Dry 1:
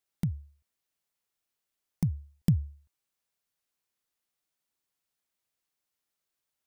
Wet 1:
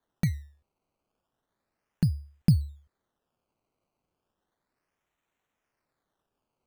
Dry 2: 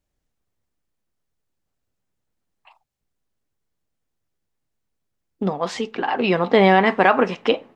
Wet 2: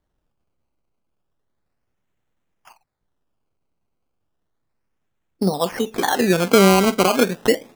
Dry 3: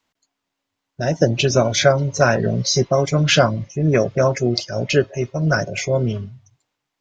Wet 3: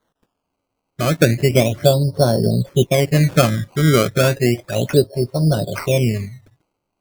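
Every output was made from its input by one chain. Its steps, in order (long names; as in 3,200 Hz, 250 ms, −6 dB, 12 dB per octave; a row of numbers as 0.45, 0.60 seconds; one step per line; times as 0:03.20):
treble cut that deepens with the level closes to 570 Hz, closed at −16.5 dBFS
sample-and-hold swept by an LFO 17×, swing 100% 0.33 Hz
level +3.5 dB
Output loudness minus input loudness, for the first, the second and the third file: +3.5, +1.0, +1.5 LU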